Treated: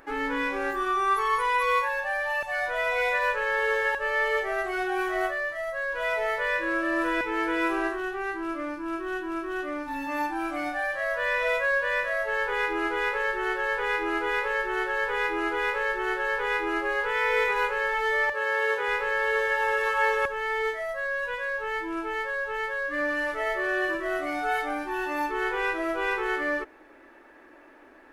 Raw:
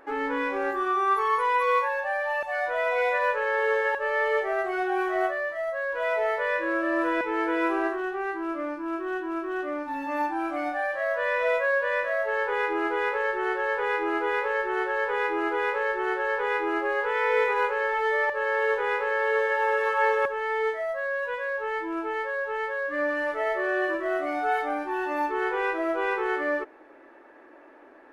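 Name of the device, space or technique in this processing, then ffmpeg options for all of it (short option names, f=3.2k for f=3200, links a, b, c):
smiley-face EQ: -filter_complex "[0:a]asettb=1/sr,asplit=3[a][b][c];[a]atrim=end=18.324[d];[b]atrim=start=18.32:end=18.88,asetpts=PTS-STARTPTS,afade=t=in:d=0.004:c=qsin,afade=t=out:st=0.556:d=0.004:c=qsin,highpass=140[e];[c]atrim=start=18.876[f];[d][e]acrossfade=d=0.004:c1=hsin:c2=qsin[g];[g][f]acrossfade=d=0.004:c1=qsin:c2=hsin,lowshelf=f=160:g=8.5,equalizer=f=520:t=o:w=2.9:g=-8,highshelf=f=5.1k:g=5.5,volume=4dB"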